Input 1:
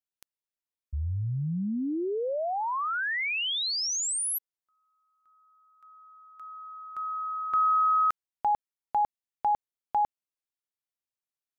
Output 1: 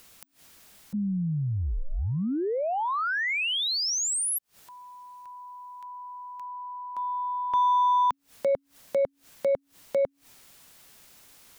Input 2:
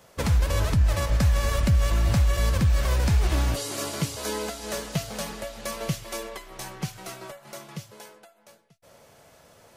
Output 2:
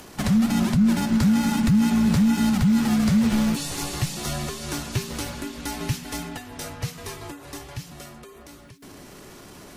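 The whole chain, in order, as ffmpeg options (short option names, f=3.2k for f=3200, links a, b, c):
-filter_complex "[0:a]aeval=exprs='0.237*(cos(1*acos(clip(val(0)/0.237,-1,1)))-cos(1*PI/2))+0.0075*(cos(7*acos(clip(val(0)/0.237,-1,1)))-cos(7*PI/2))':c=same,asplit=2[a][b];[b]acompressor=threshold=-35dB:ratio=6:attack=2.1:release=31,volume=-0.5dB[c];[a][c]amix=inputs=2:normalize=0,afreqshift=-280,acompressor=mode=upward:threshold=-35dB:ratio=4:attack=0.45:release=111:knee=2.83:detection=peak"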